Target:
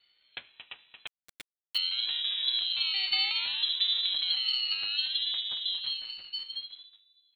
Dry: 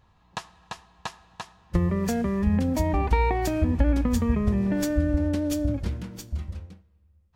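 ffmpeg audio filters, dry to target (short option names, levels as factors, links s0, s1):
-filter_complex "[0:a]asplit=2[s0][s1];[s1]asoftclip=type=tanh:threshold=0.0531,volume=0.251[s2];[s0][s2]amix=inputs=2:normalize=0,asplit=2[s3][s4];[s4]adelay=227.4,volume=0.447,highshelf=f=4000:g=-5.12[s5];[s3][s5]amix=inputs=2:normalize=0,lowpass=f=3200:t=q:w=0.5098,lowpass=f=3200:t=q:w=0.6013,lowpass=f=3200:t=q:w=0.9,lowpass=f=3200:t=q:w=2.563,afreqshift=-3800,asettb=1/sr,asplit=3[s6][s7][s8];[s6]atrim=end=1.074[s9];[s7]atrim=start=1.07:end=1.78,asetpts=PTS-STARTPTS,afade=t=in:d=0.004:c=qsin,afade=t=out:st=0.706:d=0.004:c=qsin,aeval=exprs='val(0)*gte(abs(val(0)),0.0398)':c=same[s10];[s8]atrim=start=1.776[s11];[s9][s10]acrossfade=d=0.004:c1=hsin:c2=qsin[s12];[s12][s11]acrossfade=d=0.004:c1=qsin:c2=hsin,aeval=exprs='val(0)*sin(2*PI*460*n/s+460*0.55/0.64*sin(2*PI*0.64*n/s))':c=same,volume=0.501"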